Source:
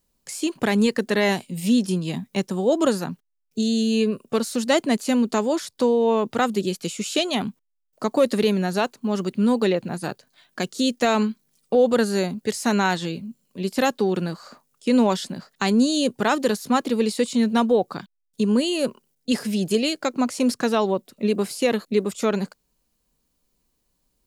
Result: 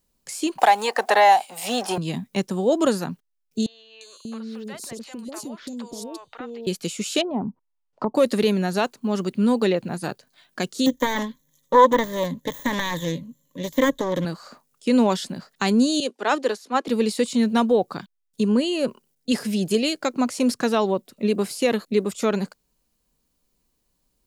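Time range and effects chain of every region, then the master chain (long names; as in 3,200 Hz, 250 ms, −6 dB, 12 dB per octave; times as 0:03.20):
0:00.58–0:01.98: mu-law and A-law mismatch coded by mu + high-pass with resonance 770 Hz, resonance Q 8.8 + multiband upward and downward compressor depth 70%
0:03.66–0:06.67: downward compressor 10 to 1, threshold −30 dBFS + three-band delay without the direct sound mids, highs, lows 350/590 ms, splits 620/3,700 Hz
0:07.21–0:08.15: low-pass filter 3,700 Hz + treble cut that deepens with the level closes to 500 Hz, closed at −24.5 dBFS + parametric band 930 Hz +11 dB 0.5 octaves
0:10.86–0:14.25: phase distortion by the signal itself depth 0.47 ms + de-essing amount 70% + EQ curve with evenly spaced ripples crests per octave 1.1, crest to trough 15 dB
0:16.00–0:16.88: high-pass filter 300 Hz 24 dB per octave + high-frequency loss of the air 54 metres + multiband upward and downward expander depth 100%
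0:18.48–0:18.88: notch filter 3,600 Hz, Q 19 + de-essing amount 35% + high-shelf EQ 7,300 Hz −11 dB
whole clip: no processing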